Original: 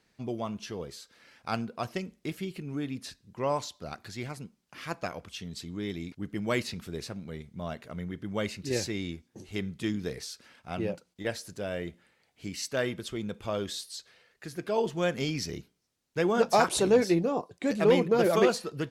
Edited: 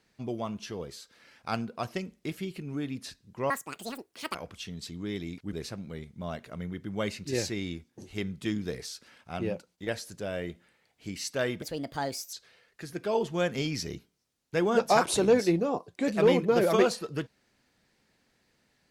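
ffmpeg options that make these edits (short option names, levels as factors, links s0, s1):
-filter_complex "[0:a]asplit=6[s0][s1][s2][s3][s4][s5];[s0]atrim=end=3.504[s6];[s1]atrim=start=3.5:end=5.09,asetpts=PTS-STARTPTS,asetrate=82467,aresample=44100[s7];[s2]atrim=start=5.086:end=6.272[s8];[s3]atrim=start=6.908:end=13.004[s9];[s4]atrim=start=13:end=13.96,asetpts=PTS-STARTPTS,asetrate=59535,aresample=44100[s10];[s5]atrim=start=13.956[s11];[s6][s7]acrossfade=d=0.004:c1=hsin:c2=hsin[s12];[s12][s8]acrossfade=d=0.004:c1=hsin:c2=hsin[s13];[s13][s9]acrossfade=d=0.004:c1=hsin:c2=hsin[s14];[s14][s10]acrossfade=d=0.004:c1=hsin:c2=hsin[s15];[s15][s11]acrossfade=d=0.004:c1=hsin:c2=hsin"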